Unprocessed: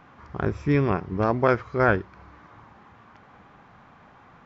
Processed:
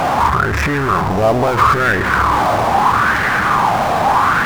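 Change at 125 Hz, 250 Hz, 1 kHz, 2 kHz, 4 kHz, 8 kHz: +8.0 dB, +7.0 dB, +19.0 dB, +16.5 dB, +23.5 dB, can't be measured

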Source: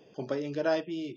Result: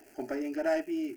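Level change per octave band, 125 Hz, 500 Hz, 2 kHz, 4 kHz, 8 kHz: below −15 dB, −1.5 dB, 0.0 dB, −7.5 dB, can't be measured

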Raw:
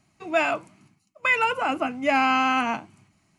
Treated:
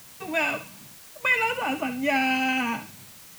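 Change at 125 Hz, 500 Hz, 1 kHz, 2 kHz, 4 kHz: +2.5, −4.0, −5.0, 0.0, +0.5 decibels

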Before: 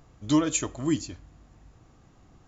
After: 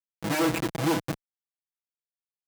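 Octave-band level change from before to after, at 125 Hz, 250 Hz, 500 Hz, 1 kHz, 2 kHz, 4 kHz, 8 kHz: +1.0 dB, −2.5 dB, +3.5 dB, +5.5 dB, +8.0 dB, +2.0 dB, can't be measured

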